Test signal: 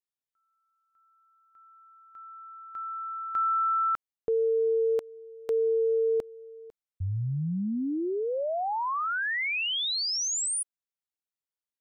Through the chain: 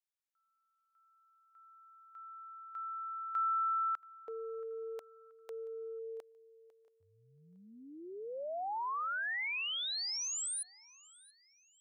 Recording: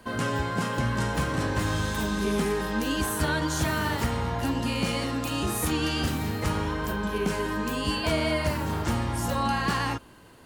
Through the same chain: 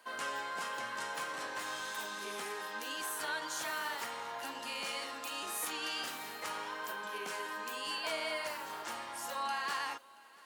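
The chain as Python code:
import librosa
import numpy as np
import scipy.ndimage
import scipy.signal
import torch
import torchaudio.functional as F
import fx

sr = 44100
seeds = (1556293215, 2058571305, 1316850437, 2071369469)

y = fx.rider(x, sr, range_db=3, speed_s=2.0)
y = scipy.signal.sosfilt(scipy.signal.butter(2, 720.0, 'highpass', fs=sr, output='sos'), y)
y = fx.echo_feedback(y, sr, ms=679, feedback_pct=38, wet_db=-23)
y = y * librosa.db_to_amplitude(-7.0)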